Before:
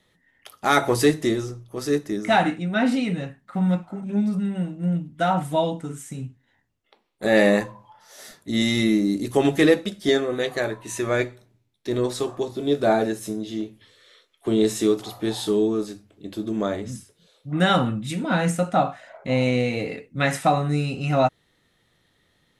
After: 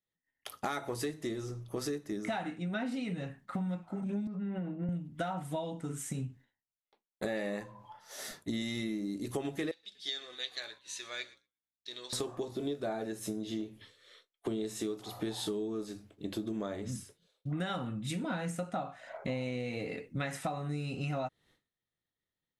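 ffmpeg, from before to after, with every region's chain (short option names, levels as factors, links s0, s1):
-filter_complex "[0:a]asettb=1/sr,asplit=3[s0][s1][s2];[s0]atrim=end=4.274[s3];[s1]atrim=start=4.27:end=4.89,asetpts=PTS-STARTPTS,afade=t=in:d=0.004:c=qsin,afade=t=out:st=0.616:d=0.004:c=qsin,highpass=190,lowpass=2000,acompressor=threshold=0.0398:ratio=2.5:attack=3.2:release=140:knee=1:detection=peak[s4];[s2]atrim=start=4.886[s5];[s3][s4]acrossfade=d=0.004:c1=hsin:c2=qsin[s6];[s6][s5]acrossfade=d=0.004:c1=qsin:c2=hsin,asettb=1/sr,asplit=3[s7][s8][s9];[s7]atrim=end=9.714[s10];[s8]atrim=start=9.71:end=12.13,asetpts=PTS-STARTPTS,afade=t=in:d=0.004:c=qsin,afade=t=out:st=2.416:d=0.004:c=qsin,aeval=exprs='val(0)+0.0126*(sin(2*PI*60*n/s)+sin(2*PI*2*60*n/s)/2+sin(2*PI*3*60*n/s)/3+sin(2*PI*4*60*n/s)/4+sin(2*PI*5*60*n/s)/5)':c=same,bandpass=f=4100:t=q:w=2.5,asplit=5[s11][s12][s13][s14][s15];[s12]adelay=119,afreqshift=-33,volume=0.0891[s16];[s13]adelay=238,afreqshift=-66,volume=0.0507[s17];[s14]adelay=357,afreqshift=-99,volume=0.0288[s18];[s15]adelay=476,afreqshift=-132,volume=0.0166[s19];[s11][s16][s17][s18][s19]amix=inputs=5:normalize=0,atrim=end_sample=106722[s20];[s9]atrim=start=12.126[s21];[s10][s20]acrossfade=d=0.004:c1=hsin:c2=qsin[s22];[s22][s21]acrossfade=d=0.004:c1=qsin:c2=hsin,agate=range=0.0224:threshold=0.00398:ratio=3:detection=peak,acompressor=threshold=0.0224:ratio=10"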